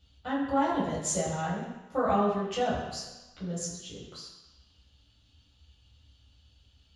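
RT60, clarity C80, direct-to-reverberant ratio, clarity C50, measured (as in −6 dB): 1.1 s, 4.0 dB, −8.0 dB, 2.0 dB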